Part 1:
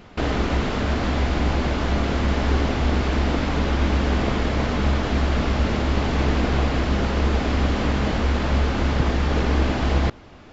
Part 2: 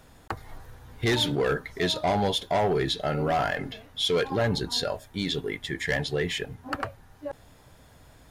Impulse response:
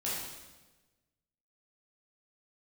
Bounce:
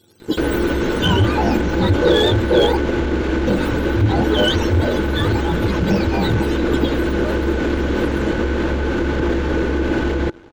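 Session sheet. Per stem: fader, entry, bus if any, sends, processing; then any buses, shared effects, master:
-5.0 dB, 0.20 s, no send, peak limiter -16.5 dBFS, peak gain reduction 9 dB
-0.5 dB, 0.00 s, muted 2.77–3.47 s, no send, spectrum inverted on a logarithmic axis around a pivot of 590 Hz; resonant high shelf 2.8 kHz +6.5 dB, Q 3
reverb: none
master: graphic EQ with 31 bands 500 Hz +9 dB, 800 Hz -11 dB, 5 kHz -6 dB; waveshaping leveller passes 2; small resonant body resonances 340/850/1500 Hz, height 13 dB, ringing for 45 ms

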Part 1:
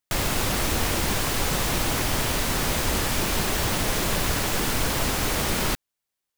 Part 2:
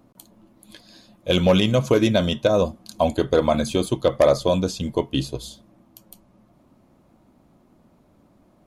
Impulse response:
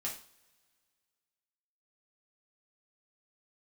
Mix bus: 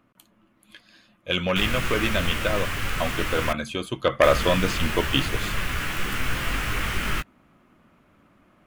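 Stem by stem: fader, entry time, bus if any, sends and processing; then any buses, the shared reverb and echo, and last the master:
-6.5 dB, 1.45 s, muted 3.53–4.23 s, no send, bass shelf 210 Hz +10.5 dB; detune thickener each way 13 cents
3.86 s -9 dB -> 4.13 s -2.5 dB, 0.00 s, no send, none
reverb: none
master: high-order bell 1.9 kHz +11.5 dB

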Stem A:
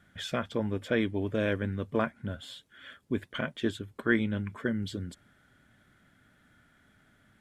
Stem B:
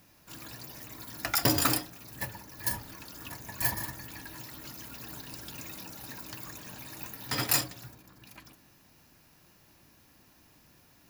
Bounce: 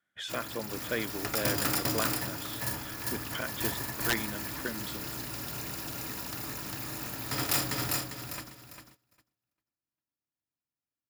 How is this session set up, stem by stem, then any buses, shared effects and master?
-0.5 dB, 0.00 s, no send, no echo send, high-pass 680 Hz 6 dB/octave
+0.5 dB, 0.00 s, no send, echo send -8.5 dB, spectral levelling over time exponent 0.6; gate -37 dBFS, range -40 dB; auto duck -8 dB, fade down 0.45 s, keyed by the first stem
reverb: none
echo: feedback delay 400 ms, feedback 29%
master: gate -57 dBFS, range -16 dB; integer overflow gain 17.5 dB

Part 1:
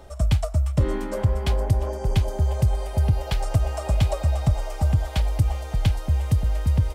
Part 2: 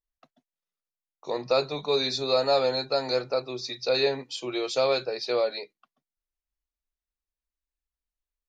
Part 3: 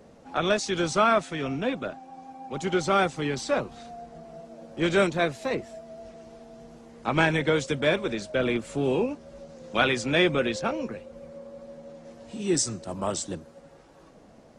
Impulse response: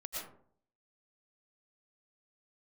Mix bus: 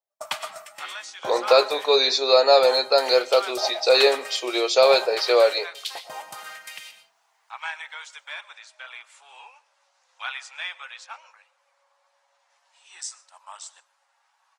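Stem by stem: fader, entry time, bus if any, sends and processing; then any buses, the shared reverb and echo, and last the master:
+1.5 dB, 0.00 s, muted 1.93–2.54 s, send -4 dB, gate -22 dBFS, range -55 dB; high-pass 140 Hz 24 dB/octave; LFO high-pass saw up 0.84 Hz 620–4400 Hz
-3.5 dB, 0.00 s, send -22.5 dB, high-pass 400 Hz 24 dB/octave; level rider gain up to 15.5 dB
-7.5 dB, 0.45 s, send -18 dB, elliptic high-pass 860 Hz, stop band 80 dB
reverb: on, RT60 0.55 s, pre-delay 75 ms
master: none

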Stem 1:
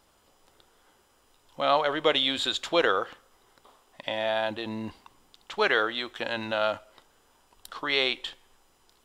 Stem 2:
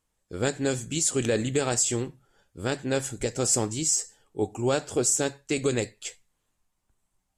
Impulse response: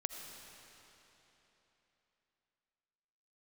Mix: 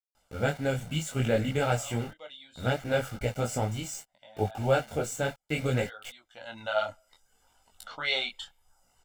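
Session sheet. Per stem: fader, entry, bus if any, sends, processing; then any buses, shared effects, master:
0.0 dB, 0.15 s, no send, peaking EQ 7.5 kHz +5.5 dB 0.35 oct; reverb removal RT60 0.71 s; auto duck -20 dB, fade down 1.00 s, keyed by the second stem
+2.5 dB, 0.00 s, no send, high-order bell 6.7 kHz -14.5 dB; small samples zeroed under -40.5 dBFS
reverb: none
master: comb 1.4 ms, depth 67%; detune thickener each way 23 cents

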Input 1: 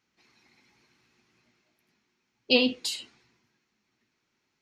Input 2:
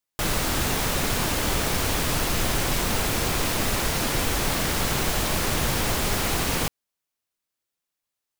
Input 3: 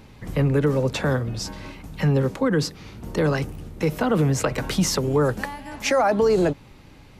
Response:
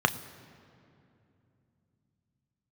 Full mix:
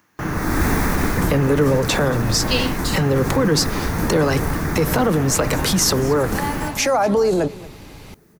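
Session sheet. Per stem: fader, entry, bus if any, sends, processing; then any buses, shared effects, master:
-1.0 dB, 0.00 s, no bus, no send, no echo send, none
-8.5 dB, 0.00 s, bus A, send -3 dB, echo send -4 dB, FFT filter 310 Hz 0 dB, 560 Hz -11 dB, 1.3 kHz -6 dB, 1.9 kHz -1 dB, 3.1 kHz -17 dB; upward compressor, threshold -44 dBFS
-1.0 dB, 0.95 s, bus A, send -21.5 dB, echo send -16 dB, none
bus A: 0.0 dB, level rider gain up to 16 dB; peak limiter -11 dBFS, peak gain reduction 9.5 dB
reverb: on, RT60 2.8 s, pre-delay 3 ms
echo: delay 230 ms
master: treble shelf 5.9 kHz +9.5 dB; gain riding within 4 dB 2 s

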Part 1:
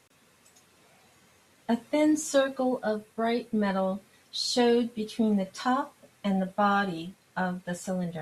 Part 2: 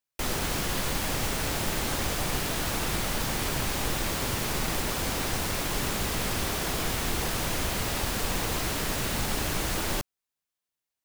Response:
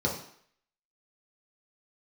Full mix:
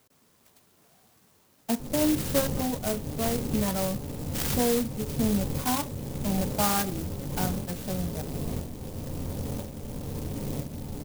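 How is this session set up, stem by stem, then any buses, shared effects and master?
-1.0 dB, 0.00 s, no send, band-stop 510 Hz, Q 12
-5.5 dB, 1.60 s, send -7 dB, Bessel low-pass 690 Hz, order 8; tremolo saw up 1 Hz, depth 70%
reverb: on, RT60 0.60 s, pre-delay 3 ms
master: sampling jitter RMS 0.14 ms

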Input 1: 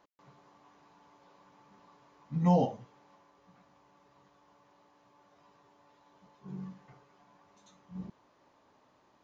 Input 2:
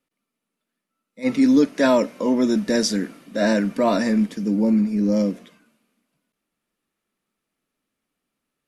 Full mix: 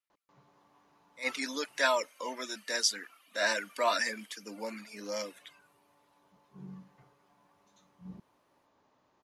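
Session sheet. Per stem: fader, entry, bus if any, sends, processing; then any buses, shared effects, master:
-4.5 dB, 0.10 s, muted 2.07–4.49 s, no send, none
-11.5 dB, 0.00 s, no send, reverb removal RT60 0.7 s; high-pass 1.1 kHz 12 dB/octave; level rider gain up to 13 dB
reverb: none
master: none

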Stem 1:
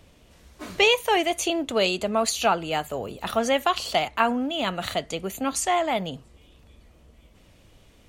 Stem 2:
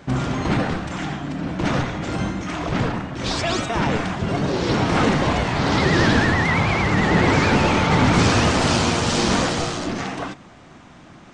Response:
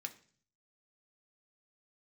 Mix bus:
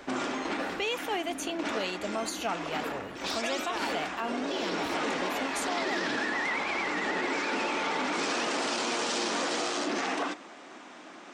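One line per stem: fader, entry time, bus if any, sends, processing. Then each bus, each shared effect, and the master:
-9.5 dB, 0.00 s, no send, none
-1.5 dB, 0.00 s, send -8 dB, high-pass 280 Hz 24 dB/octave; auto duck -12 dB, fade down 0.60 s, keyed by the first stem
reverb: on, RT60 0.45 s, pre-delay 3 ms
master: peak limiter -21.5 dBFS, peak gain reduction 14 dB

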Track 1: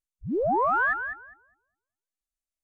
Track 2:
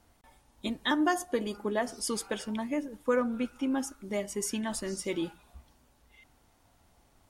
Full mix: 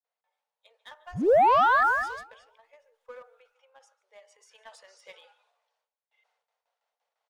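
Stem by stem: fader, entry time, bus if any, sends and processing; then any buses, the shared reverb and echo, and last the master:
-4.5 dB, 0.90 s, no send, no echo send, high-order bell 780 Hz +11.5 dB
4.09 s -20 dB -> 4.85 s -12 dB, 0.00 s, no send, echo send -22.5 dB, low-pass 4.9 kHz 12 dB/octave; gate with hold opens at -54 dBFS; Chebyshev high-pass 450 Hz, order 8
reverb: none
echo: delay 144 ms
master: waveshaping leveller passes 1; transient shaper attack +2 dB, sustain +7 dB; peak limiter -15 dBFS, peak gain reduction 5 dB

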